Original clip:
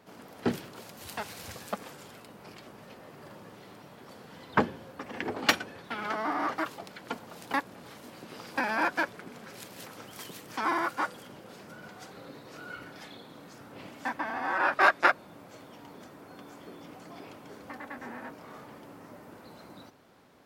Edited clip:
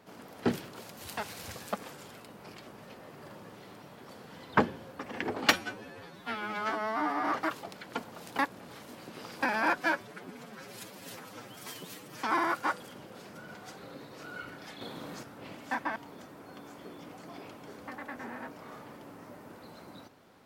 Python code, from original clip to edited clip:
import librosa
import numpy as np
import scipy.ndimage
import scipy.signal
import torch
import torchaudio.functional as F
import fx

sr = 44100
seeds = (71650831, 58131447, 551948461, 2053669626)

y = fx.edit(x, sr, fx.stretch_span(start_s=5.54, length_s=0.85, factor=2.0),
    fx.stretch_span(start_s=8.94, length_s=1.62, factor=1.5),
    fx.clip_gain(start_s=13.15, length_s=0.42, db=6.5),
    fx.cut(start_s=14.3, length_s=1.48), tone=tone)